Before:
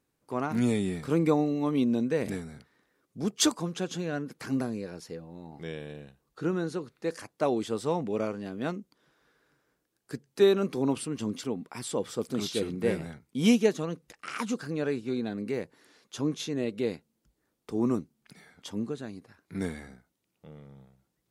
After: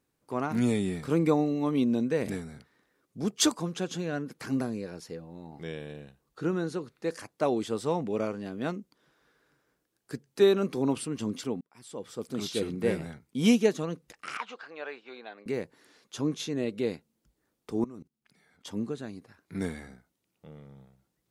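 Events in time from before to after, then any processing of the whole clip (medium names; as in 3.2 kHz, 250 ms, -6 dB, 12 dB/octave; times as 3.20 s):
11.61–12.63 s: fade in
14.37–15.46 s: Chebyshev band-pass 730–3100 Hz
17.84–18.67 s: level held to a coarse grid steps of 22 dB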